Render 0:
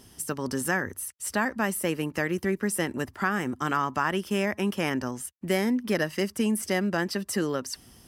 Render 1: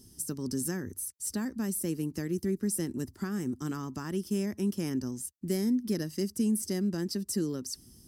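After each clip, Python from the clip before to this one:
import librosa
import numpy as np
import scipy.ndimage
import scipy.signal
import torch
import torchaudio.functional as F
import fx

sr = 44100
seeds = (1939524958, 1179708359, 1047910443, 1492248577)

y = fx.band_shelf(x, sr, hz=1300.0, db=-16.0, octaves=3.0)
y = y * librosa.db_to_amplitude(-1.5)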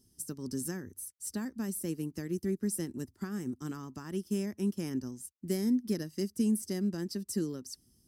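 y = fx.upward_expand(x, sr, threshold_db=-48.0, expansion=1.5)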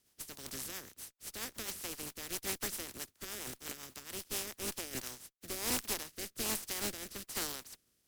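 y = fx.spec_flatten(x, sr, power=0.21)
y = fx.tube_stage(y, sr, drive_db=26.0, bias=0.7)
y = fx.rotary_switch(y, sr, hz=7.5, then_hz=1.2, switch_at_s=4.22)
y = y * librosa.db_to_amplitude(1.0)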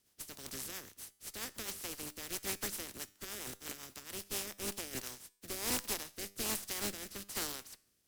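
y = fx.comb_fb(x, sr, f0_hz=100.0, decay_s=0.56, harmonics='all', damping=0.0, mix_pct=40)
y = y * librosa.db_to_amplitude(3.0)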